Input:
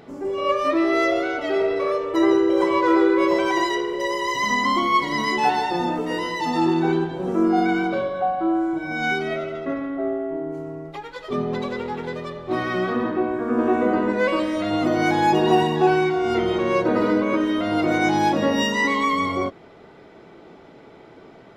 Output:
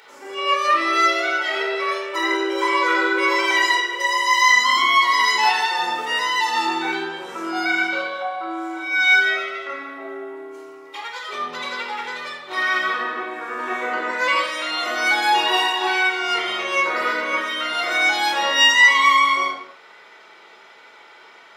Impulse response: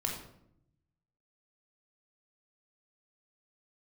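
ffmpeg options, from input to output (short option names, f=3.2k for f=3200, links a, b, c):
-filter_complex "[0:a]highpass=1.4k[a];[1:a]atrim=start_sample=2205,afade=t=out:st=0.33:d=0.01,atrim=end_sample=14994[b];[a][b]afir=irnorm=-1:irlink=0,volume=7dB"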